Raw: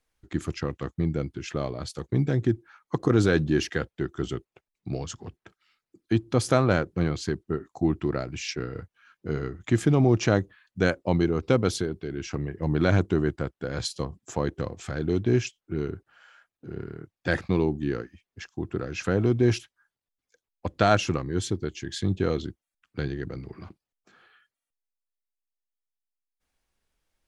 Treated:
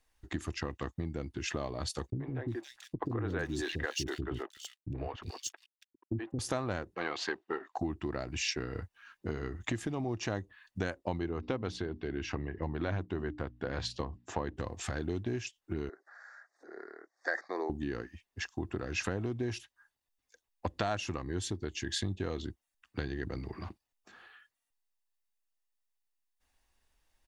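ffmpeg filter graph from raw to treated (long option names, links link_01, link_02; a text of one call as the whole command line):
ffmpeg -i in.wav -filter_complex "[0:a]asettb=1/sr,asplit=3[link_01][link_02][link_03];[link_01]atrim=end=2.104[link_04];[link_02]atrim=start=2.1:end=6.39,asetpts=PTS-STARTPTS,afade=type=in:duration=0.004:curve=qsin,afade=type=out:start_time=4.286:duration=0.004:curve=qsin,bandreject=frequency=210:width=6.1,aeval=exprs='sgn(val(0))*max(abs(val(0))-0.00335,0)':channel_layout=same,acrossover=split=350|2700[link_05][link_06][link_07];[link_06]adelay=80[link_08];[link_07]adelay=360[link_09];[link_05][link_08][link_09]amix=inputs=3:normalize=0,atrim=end_sample=189189[link_10];[link_03]atrim=start=6.386[link_11];[link_04][link_10]acrossfade=duration=0.004:curve1=hsin:curve2=qsin[link_12];[link_12][link_11]acrossfade=duration=0.004:curve1=qsin:curve2=hsin,asettb=1/sr,asplit=3[link_13][link_14][link_15];[link_13]atrim=end=6.954[link_16];[link_14]atrim=start=6.95:end=7.79,asetpts=PTS-STARTPTS,afade=type=in:duration=0.004:curve=qsin,afade=type=out:start_time=0.836:duration=0.004:curve=qsin,aeval=exprs='if(lt(val(0),0),0.708*val(0),val(0))':channel_layout=same,highpass=590,lowpass=3400,acontrast=38[link_17];[link_15]atrim=start=7.786[link_18];[link_16][link_17]acrossfade=duration=0.004:curve1=hsin:curve2=qsin[link_19];[link_19][link_18]acrossfade=duration=0.004:curve1=qsin:curve2=hsin,asettb=1/sr,asplit=3[link_20][link_21][link_22];[link_20]atrim=end=11.194[link_23];[link_21]atrim=start=11.19:end=14.57,asetpts=PTS-STARTPTS,afade=type=in:duration=0.004:curve=qsin,afade=type=out:start_time=3.376:duration=0.004:curve=qsin,lowpass=3800,bandreject=frequency=60:width_type=h:width=6,bandreject=frequency=120:width_type=h:width=6,bandreject=frequency=180:width_type=h:width=6,bandreject=frequency=240:width_type=h:width=6,bandreject=frequency=300:width_type=h:width=6[link_24];[link_22]atrim=start=14.566[link_25];[link_23][link_24]acrossfade=duration=0.004:curve1=hsin:curve2=qsin[link_26];[link_26][link_25]acrossfade=duration=0.004:curve1=qsin:curve2=hsin,asettb=1/sr,asplit=3[link_27][link_28][link_29];[link_27]atrim=end=15.894[link_30];[link_28]atrim=start=15.89:end=17.7,asetpts=PTS-STARTPTS,afade=type=in:duration=0.004:curve=qsin,afade=type=out:start_time=1.806:duration=0.004:curve=qsin,asuperstop=centerf=2900:order=4:qfactor=0.76,highpass=frequency=460:width=0.5412,highpass=frequency=460:width=1.3066,equalizer=frequency=470:width_type=q:width=4:gain=-3,equalizer=frequency=940:width_type=q:width=4:gain=-8,equalizer=frequency=1900:width_type=q:width=4:gain=9,equalizer=frequency=3800:width_type=q:width=4:gain=3,lowpass=frequency=6200:width=0.5412,lowpass=frequency=6200:width=1.3066,acompressor=mode=upward:threshold=-49dB:ratio=2.5:attack=3.2:release=140:knee=2.83:detection=peak[link_31];[link_29]atrim=start=17.696[link_32];[link_30][link_31]acrossfade=duration=0.004:curve1=hsin:curve2=qsin[link_33];[link_33][link_32]acrossfade=duration=0.004:curve1=qsin:curve2=hsin,aecho=1:1:1.1:0.31,acompressor=threshold=-32dB:ratio=5,equalizer=frequency=150:width=1.8:gain=-9.5,volume=2.5dB" out.wav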